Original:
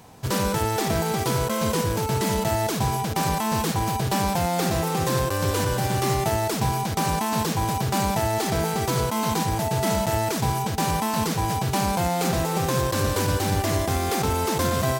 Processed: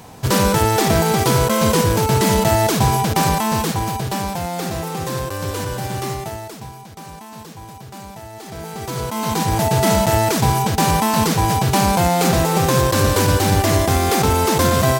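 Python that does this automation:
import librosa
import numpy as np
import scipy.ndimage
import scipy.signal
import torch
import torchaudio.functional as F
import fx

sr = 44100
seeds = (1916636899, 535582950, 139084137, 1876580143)

y = fx.gain(x, sr, db=fx.line((3.11, 8.0), (4.35, -1.0), (6.03, -1.0), (6.75, -12.5), (8.32, -12.5), (8.87, -3.0), (9.62, 7.5)))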